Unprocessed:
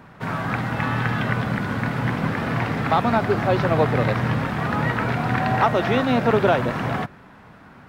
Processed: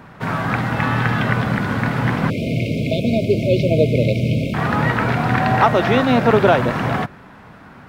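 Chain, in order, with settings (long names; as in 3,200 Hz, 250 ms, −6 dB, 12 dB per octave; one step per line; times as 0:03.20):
0:02.30–0:04.54: linear-phase brick-wall band-stop 680–2,100 Hz
level +4.5 dB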